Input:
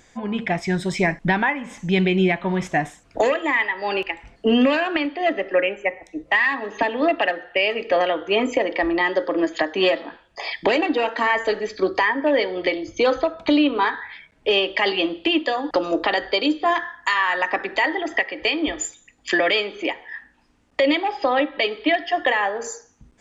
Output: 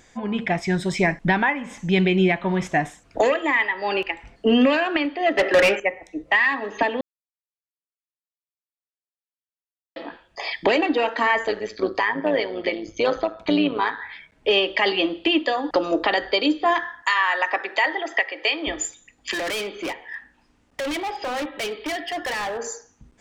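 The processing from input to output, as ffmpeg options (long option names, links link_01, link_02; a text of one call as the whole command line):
ffmpeg -i in.wav -filter_complex "[0:a]asettb=1/sr,asplit=3[link_01][link_02][link_03];[link_01]atrim=end=5.374[link_04];[link_02]atrim=start=5.37:end=5.8,asetpts=PTS-STARTPTS,afade=type=in:duration=0.004:curve=qsin,afade=type=out:start_time=0.426:duration=0.004:curve=qsin,asplit=2[link_05][link_06];[link_06]highpass=frequency=720:poles=1,volume=22dB,asoftclip=type=tanh:threshold=-9dB[link_07];[link_05][link_07]amix=inputs=2:normalize=0,lowpass=frequency=4000:poles=1,volume=-6dB[link_08];[link_03]atrim=start=5.796[link_09];[link_04][link_08]acrossfade=duration=0.004:curve1=hsin:curve2=qsin[link_10];[link_10][link_09]acrossfade=duration=0.004:curve1=qsin:curve2=hsin,asettb=1/sr,asplit=3[link_11][link_12][link_13];[link_11]atrim=end=11.454[link_14];[link_12]atrim=start=11.45:end=14,asetpts=PTS-STARTPTS,afade=type=in:duration=0.004:curve=qsin,afade=type=out:start_time=2.546:duration=0.004:curve=qsin,tremolo=f=110:d=0.621[link_15];[link_13]atrim=start=13.996[link_16];[link_14][link_15]acrossfade=duration=0.004:curve1=hsin:curve2=qsin[link_17];[link_17][link_16]acrossfade=duration=0.004:curve1=qsin:curve2=hsin,asettb=1/sr,asplit=3[link_18][link_19][link_20];[link_18]atrim=end=17.024[link_21];[link_19]atrim=start=17.02:end=18.67,asetpts=PTS-STARTPTS,afade=type=in:duration=0.004:curve=qsin,afade=type=out:start_time=1.646:duration=0.004:curve=qsin,highpass=470[link_22];[link_20]atrim=start=18.666[link_23];[link_21][link_22]acrossfade=duration=0.004:curve1=hsin:curve2=qsin[link_24];[link_24][link_23]acrossfade=duration=0.004:curve1=qsin:curve2=hsin,asettb=1/sr,asplit=3[link_25][link_26][link_27];[link_25]atrim=end=19.314[link_28];[link_26]atrim=start=19.31:end=22.58,asetpts=PTS-STARTPTS,afade=type=in:duration=0.004:curve=qsin,afade=type=out:start_time=3.266:duration=0.004:curve=qsin,volume=25dB,asoftclip=hard,volume=-25dB[link_29];[link_27]atrim=start=22.576[link_30];[link_28][link_29]acrossfade=duration=0.004:curve1=hsin:curve2=qsin[link_31];[link_31][link_30]acrossfade=duration=0.004:curve1=qsin:curve2=hsin,asplit=3[link_32][link_33][link_34];[link_32]atrim=end=7.01,asetpts=PTS-STARTPTS,afade=type=out:start_time=7.006:duration=0.004:curve=hsin[link_35];[link_33]atrim=start=7.01:end=9.96,asetpts=PTS-STARTPTS,volume=0[link_36];[link_34]atrim=start=9.96,asetpts=PTS-STARTPTS,afade=type=in:duration=0.004:curve=hsin[link_37];[link_35][link_36][link_37]concat=n=3:v=0:a=1" out.wav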